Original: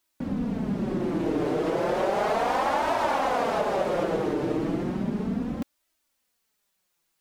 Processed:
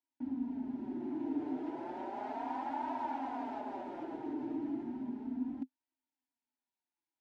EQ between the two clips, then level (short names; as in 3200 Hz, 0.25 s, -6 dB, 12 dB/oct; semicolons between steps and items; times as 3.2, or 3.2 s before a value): double band-pass 500 Hz, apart 1.9 oct; fixed phaser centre 460 Hz, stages 4; +4.5 dB